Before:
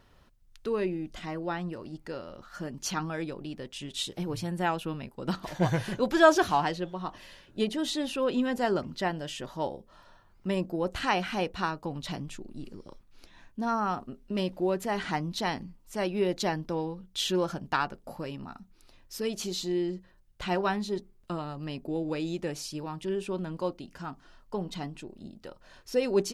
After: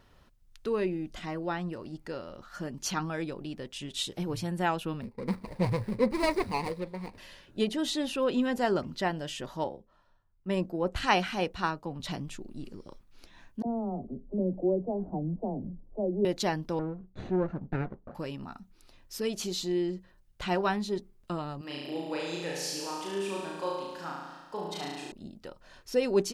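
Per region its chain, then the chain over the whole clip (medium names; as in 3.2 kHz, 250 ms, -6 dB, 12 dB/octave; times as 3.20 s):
5.01–7.18 s: median filter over 41 samples + rippled EQ curve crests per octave 0.92, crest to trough 10 dB
9.64–12.00 s: treble shelf 11 kHz -2.5 dB + three bands expanded up and down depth 70%
13.62–16.25 s: companding laws mixed up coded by mu + steep low-pass 670 Hz + phase dispersion lows, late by 49 ms, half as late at 330 Hz
16.79–18.15 s: comb filter that takes the minimum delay 0.48 ms + low-pass 1 kHz
21.61–25.12 s: high-pass 670 Hz 6 dB/octave + flutter echo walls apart 6.1 m, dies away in 1.3 s
whole clip: none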